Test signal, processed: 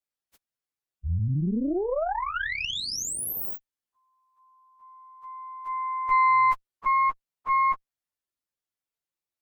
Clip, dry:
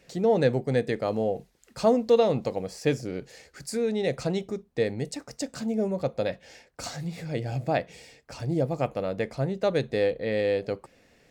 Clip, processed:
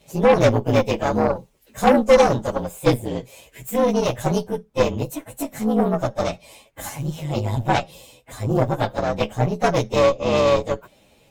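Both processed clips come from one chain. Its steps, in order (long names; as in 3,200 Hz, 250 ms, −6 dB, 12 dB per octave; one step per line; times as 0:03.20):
partials spread apart or drawn together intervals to 116%
harmonic generator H 8 −18 dB, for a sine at −10.5 dBFS
level +8.5 dB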